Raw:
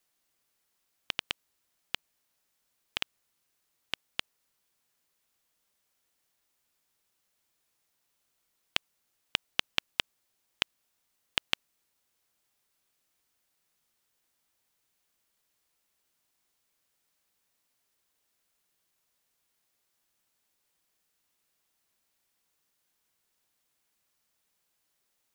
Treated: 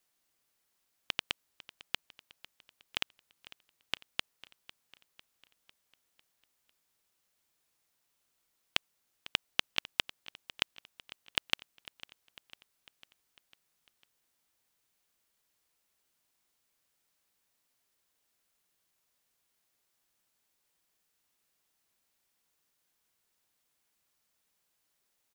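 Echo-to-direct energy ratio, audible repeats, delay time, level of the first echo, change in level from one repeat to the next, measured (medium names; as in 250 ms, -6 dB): -17.0 dB, 4, 500 ms, -18.5 dB, -5.0 dB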